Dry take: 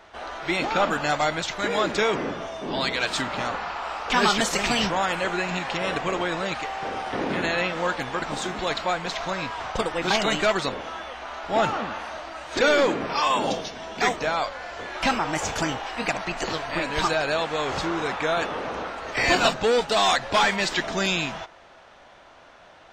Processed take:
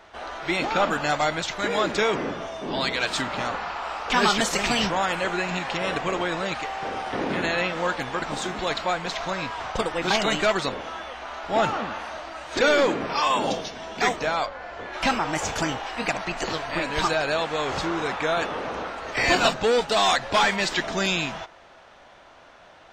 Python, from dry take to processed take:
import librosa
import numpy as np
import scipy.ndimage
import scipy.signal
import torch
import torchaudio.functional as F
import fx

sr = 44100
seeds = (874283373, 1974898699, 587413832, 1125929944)

y = fx.lowpass(x, sr, hz=fx.line((14.45, 1500.0), (14.92, 2500.0)), slope=6, at=(14.45, 14.92), fade=0.02)